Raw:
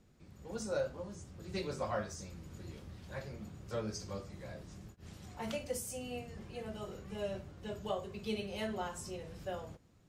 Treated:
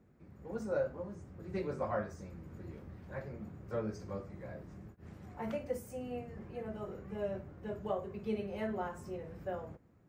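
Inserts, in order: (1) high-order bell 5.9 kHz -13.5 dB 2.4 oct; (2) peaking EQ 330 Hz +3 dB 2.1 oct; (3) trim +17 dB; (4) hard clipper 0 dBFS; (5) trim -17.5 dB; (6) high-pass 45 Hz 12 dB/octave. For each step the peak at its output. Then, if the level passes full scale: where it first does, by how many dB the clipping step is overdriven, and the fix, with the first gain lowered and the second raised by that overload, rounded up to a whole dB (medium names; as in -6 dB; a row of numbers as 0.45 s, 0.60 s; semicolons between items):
-24.0 dBFS, -22.5 dBFS, -5.5 dBFS, -5.5 dBFS, -23.0 dBFS, -23.0 dBFS; nothing clips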